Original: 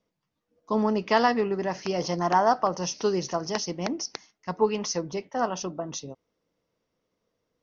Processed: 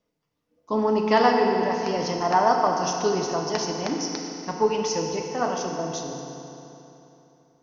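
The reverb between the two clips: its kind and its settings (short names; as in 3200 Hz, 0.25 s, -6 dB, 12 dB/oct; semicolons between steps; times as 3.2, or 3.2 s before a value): FDN reverb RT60 3.2 s, high-frequency decay 0.8×, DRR 1 dB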